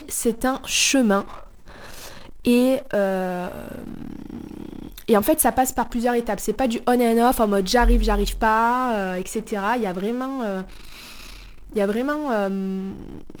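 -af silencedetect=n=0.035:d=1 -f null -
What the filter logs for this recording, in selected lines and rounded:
silence_start: 10.62
silence_end: 11.76 | silence_duration: 1.13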